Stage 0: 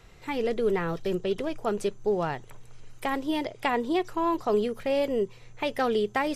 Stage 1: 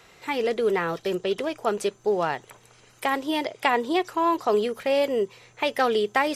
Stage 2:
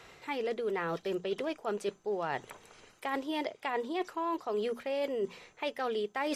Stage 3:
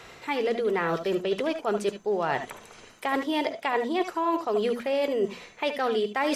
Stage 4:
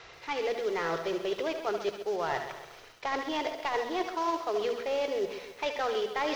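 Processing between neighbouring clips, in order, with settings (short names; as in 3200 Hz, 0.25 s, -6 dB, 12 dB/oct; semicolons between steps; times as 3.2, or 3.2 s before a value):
HPF 470 Hz 6 dB/oct; gain +6 dB
high shelf 6000 Hz -6.5 dB; notches 60/120/180/240 Hz; reverse; compressor 6:1, threshold -31 dBFS, peak gain reduction 14 dB; reverse
reverb, pre-delay 69 ms, DRR 9.5 dB; gain +7 dB
CVSD 32 kbps; bell 220 Hz -13 dB 0.68 oct; lo-fi delay 0.133 s, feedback 55%, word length 8-bit, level -10.5 dB; gain -3 dB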